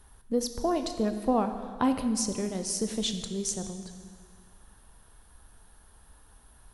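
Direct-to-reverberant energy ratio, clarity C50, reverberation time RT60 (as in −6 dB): 7.5 dB, 8.5 dB, 1.9 s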